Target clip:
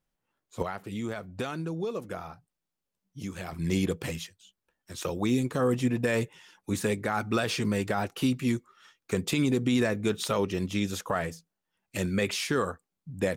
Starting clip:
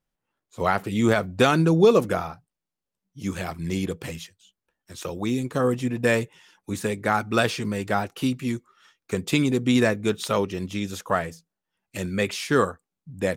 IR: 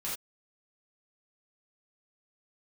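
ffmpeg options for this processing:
-filter_complex "[0:a]asettb=1/sr,asplit=3[a][b][c];[a]atrim=end=0.624[d];[b]atrim=start=0.62:end=3.53,asetpts=PTS-STARTPTS,afade=t=in:d=0.004:c=qsin,afade=t=out:st=2.906:d=0.004:c=qsin,acompressor=threshold=-36dB:ratio=3[e];[c]atrim=start=3.526[f];[d][e]acrossfade=d=0.004:c1=hsin:c2=qsin[g];[g][f]acrossfade=d=0.004:c1=qsin:c2=hsin,alimiter=limit=-16dB:level=0:latency=1:release=65"

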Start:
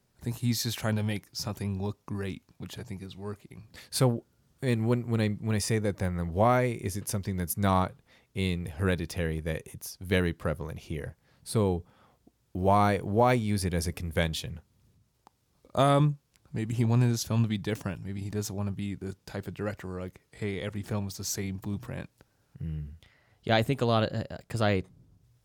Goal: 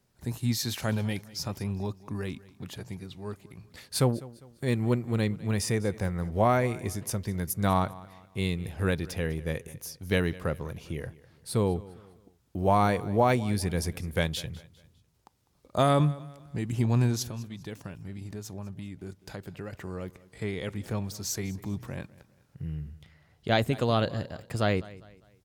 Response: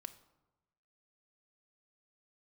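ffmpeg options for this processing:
-filter_complex "[0:a]asettb=1/sr,asplit=3[a][b][c];[a]atrim=end=17.224[d];[b]atrim=start=17.22:end=19.73,asetpts=PTS-STARTPTS,afade=t=in:d=0.004:c=qsin,afade=t=out:st=2.506:d=0.004:c=qsin,acompressor=threshold=-36dB:ratio=6[e];[c]atrim=start=19.726[f];[d][e]acrossfade=d=0.004:c1=hsin:c2=qsin[g];[g][f]acrossfade=d=0.004:c1=qsin:c2=hsin,aecho=1:1:201|402|603:0.1|0.038|0.0144"

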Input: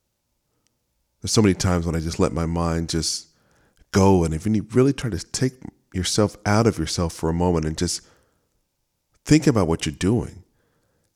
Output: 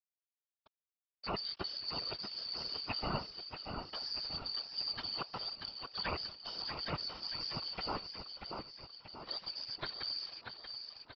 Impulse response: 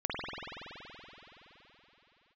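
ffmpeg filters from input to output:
-af "afftfilt=real='real(if(lt(b,272),68*(eq(floor(b/68),0)*3+eq(floor(b/68),1)*2+eq(floor(b/68),2)*1+eq(floor(b/68),3)*0)+mod(b,68),b),0)':imag='imag(if(lt(b,272),68*(eq(floor(b/68),0)*3+eq(floor(b/68),1)*2+eq(floor(b/68),2)*1+eq(floor(b/68),3)*0)+mod(b,68),b),0)':win_size=2048:overlap=0.75,lowshelf=f=150:g=4.5,areverse,acompressor=threshold=-26dB:ratio=10,areverse,alimiter=level_in=2dB:limit=-24dB:level=0:latency=1:release=365,volume=-2dB,lowpass=f=1.7k:p=1,aresample=11025,aeval=exprs='val(0)*gte(abs(val(0)),0.00178)':c=same,aresample=44100,aecho=1:1:635|1270|1905|2540|3175|3810:0.473|0.246|0.128|0.0665|0.0346|0.018,afftfilt=real='hypot(re,im)*cos(2*PI*random(0))':imag='hypot(re,im)*sin(2*PI*random(1))':win_size=512:overlap=0.75,volume=10.5dB"

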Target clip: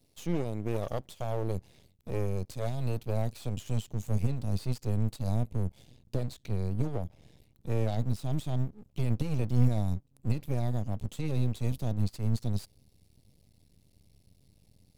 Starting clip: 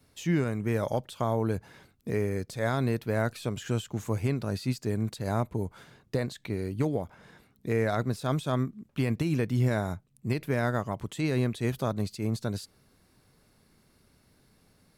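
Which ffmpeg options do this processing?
-af "highpass=65,asubboost=boost=8:cutoff=91,asuperstop=centerf=1300:order=4:qfactor=0.68,aeval=exprs='max(val(0),0)':c=same"

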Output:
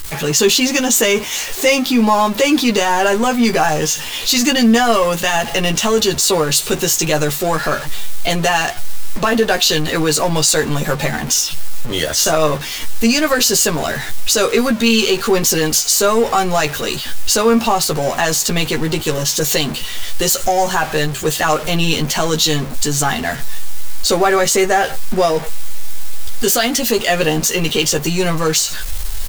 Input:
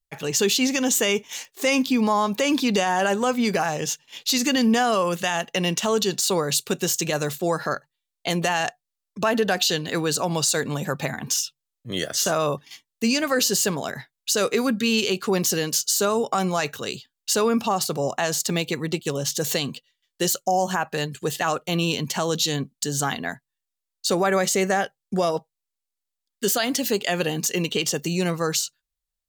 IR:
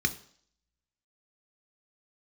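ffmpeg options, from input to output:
-filter_complex "[0:a]aeval=exprs='val(0)+0.5*0.0447*sgn(val(0))':c=same,asubboost=boost=5:cutoff=56,asplit=2[a][b];[b]adelay=13,volume=-4dB[c];[a][c]amix=inputs=2:normalize=0,volume=5dB"

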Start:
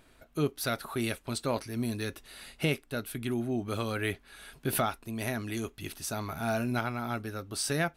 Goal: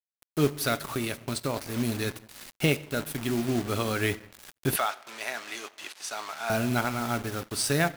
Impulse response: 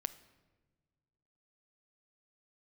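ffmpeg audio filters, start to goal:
-filter_complex "[0:a]agate=range=-33dB:threshold=-54dB:ratio=3:detection=peak,acrusher=bits=6:mix=0:aa=0.000001,asplit=3[a][b][c];[a]afade=t=out:st=0.91:d=0.02[d];[b]acompressor=threshold=-30dB:ratio=6,afade=t=in:st=0.91:d=0.02,afade=t=out:st=1.56:d=0.02[e];[c]afade=t=in:st=1.56:d=0.02[f];[d][e][f]amix=inputs=3:normalize=0[g];[1:a]atrim=start_sample=2205[h];[g][h]afir=irnorm=-1:irlink=0,aeval=exprs='sgn(val(0))*max(abs(val(0))-0.00251,0)':c=same,asettb=1/sr,asplit=3[i][j][k];[i]atrim=end=4.764[l];[j]atrim=start=4.76:end=6.5,asetpts=PTS-STARTPTS,afade=t=in:d=0.004:c=qsin,afade=t=out:st=1.736:d=0.004:c=qsin,highpass=750,lowpass=7.1k[m];[k]atrim=start=6.496[n];[l][m]acrossfade=d=0.004:c1=hsin:c2=qsin[o];[o][n]acrossfade=d=0.004:c1=qsin:c2=hsin,acrusher=bits=4:mode=log:mix=0:aa=0.000001,volume=5.5dB"

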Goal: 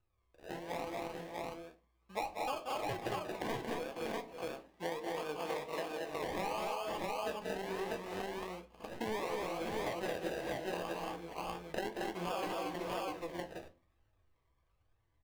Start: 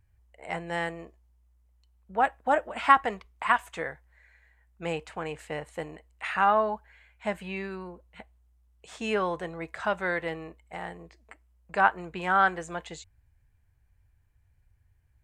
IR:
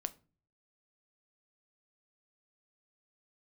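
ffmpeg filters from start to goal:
-filter_complex "[0:a]acrusher=samples=32:mix=1:aa=0.000001:lfo=1:lforange=19.2:lforate=0.71,bass=f=250:g=-11,treble=f=4k:g=-8,dynaudnorm=f=270:g=17:m=11.5dB,alimiter=limit=-11dB:level=0:latency=1:release=224,aecho=1:1:183|227|544|605|645:0.355|0.668|0.126|0.106|0.668,flanger=delay=8.6:depth=6.7:regen=65:speed=1:shape=sinusoidal,asettb=1/sr,asplit=3[a][b][c];[a]atrim=end=3.794[d];[b]atrim=start=3.79:end=6.09,asetpts=PTS-STARTPTS,afade=t=in:d=0.004:c=qsin,afade=t=out:st=2.296:d=0.004:c=qsin,lowshelf=f=100:g=-9.5[e];[c]atrim=start=6.086[f];[d][e]acrossfade=d=0.004:c1=hsin:c2=qsin[g];[g][f]acrossfade=d=0.004:c1=qsin:c2=hsin[h];[1:a]atrim=start_sample=2205,asetrate=48510,aresample=44100[i];[h][i]afir=irnorm=-1:irlink=0,acompressor=threshold=-37dB:ratio=5,bandreject=f=1.4k:w=6.1,volume=1.5dB"

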